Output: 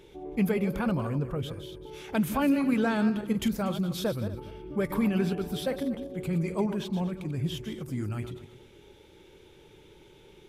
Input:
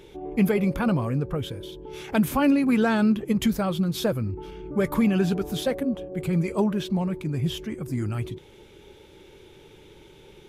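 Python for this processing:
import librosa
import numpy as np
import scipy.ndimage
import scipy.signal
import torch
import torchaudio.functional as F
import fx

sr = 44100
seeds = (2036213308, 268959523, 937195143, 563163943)

y = fx.reverse_delay_fb(x, sr, ms=119, feedback_pct=41, wet_db=-10.0)
y = fx.notch(y, sr, hz=6700.0, q=6.5, at=(4.04, 6.04))
y = F.gain(torch.from_numpy(y), -5.0).numpy()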